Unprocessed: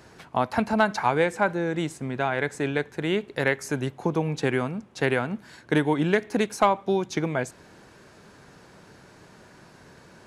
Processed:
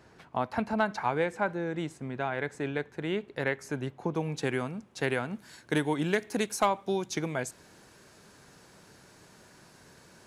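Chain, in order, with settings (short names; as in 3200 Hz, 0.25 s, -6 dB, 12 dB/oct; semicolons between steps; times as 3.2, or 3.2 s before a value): high shelf 4800 Hz -6 dB, from 4.16 s +6 dB, from 5.33 s +11 dB; gain -6 dB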